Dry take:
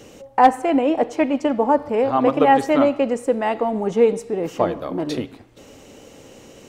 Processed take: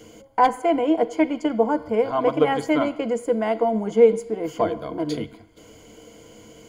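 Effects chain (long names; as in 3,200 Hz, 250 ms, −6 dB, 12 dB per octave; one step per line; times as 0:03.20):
EQ curve with evenly spaced ripples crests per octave 1.8, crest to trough 13 dB
level −4.5 dB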